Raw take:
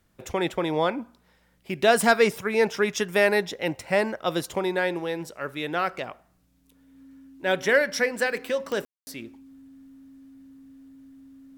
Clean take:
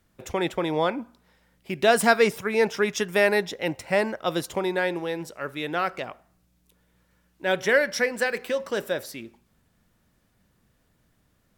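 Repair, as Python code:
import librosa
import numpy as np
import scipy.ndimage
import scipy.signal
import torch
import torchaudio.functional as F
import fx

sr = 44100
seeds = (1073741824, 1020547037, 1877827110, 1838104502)

y = fx.fix_declip(x, sr, threshold_db=-9.0)
y = fx.fix_declick_ar(y, sr, threshold=10.0)
y = fx.notch(y, sr, hz=270.0, q=30.0)
y = fx.fix_ambience(y, sr, seeds[0], print_start_s=6.22, print_end_s=6.72, start_s=8.85, end_s=9.07)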